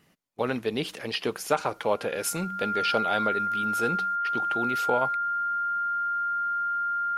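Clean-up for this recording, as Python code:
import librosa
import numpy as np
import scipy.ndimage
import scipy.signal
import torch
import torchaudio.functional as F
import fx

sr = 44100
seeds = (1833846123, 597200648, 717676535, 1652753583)

y = fx.notch(x, sr, hz=1400.0, q=30.0)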